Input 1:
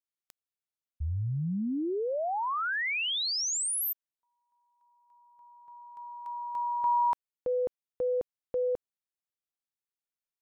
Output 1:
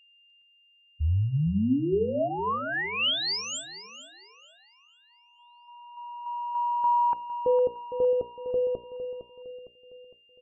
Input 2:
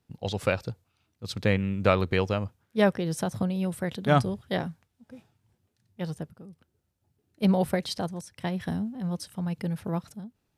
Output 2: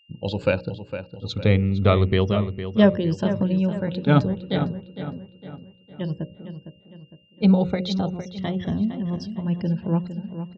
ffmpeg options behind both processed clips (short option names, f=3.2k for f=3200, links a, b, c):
-filter_complex "[0:a]afftfilt=real='re*pow(10,8/40*sin(2*PI*(1.3*log(max(b,1)*sr/1024/100)/log(2)-(-0.31)*(pts-256)/sr)))':imag='im*pow(10,8/40*sin(2*PI*(1.3*log(max(b,1)*sr/1024/100)/log(2)-(-0.31)*(pts-256)/sr)))':win_size=1024:overlap=0.75,bandreject=f=730:w=12,afftdn=nr=33:nf=-50,equalizer=f=3.4k:t=o:w=0.92:g=10.5,bandreject=f=60:t=h:w=6,bandreject=f=120:t=h:w=6,bandreject=f=180:t=h:w=6,bandreject=f=240:t=h:w=6,bandreject=f=300:t=h:w=6,bandreject=f=360:t=h:w=6,bandreject=f=420:t=h:w=6,bandreject=f=480:t=h:w=6,bandreject=f=540:t=h:w=6,bandreject=f=600:t=h:w=6,aeval=exprs='val(0)+0.00251*sin(2*PI*2800*n/s)':c=same,aresample=16000,aresample=44100,tiltshelf=f=970:g=7,asplit=2[a][b];[b]adelay=458,lowpass=f=3.5k:p=1,volume=-10.5dB,asplit=2[c][d];[d]adelay=458,lowpass=f=3.5k:p=1,volume=0.46,asplit=2[e][f];[f]adelay=458,lowpass=f=3.5k:p=1,volume=0.46,asplit=2[g][h];[h]adelay=458,lowpass=f=3.5k:p=1,volume=0.46,asplit=2[i][j];[j]adelay=458,lowpass=f=3.5k:p=1,volume=0.46[k];[c][e][g][i][k]amix=inputs=5:normalize=0[l];[a][l]amix=inputs=2:normalize=0"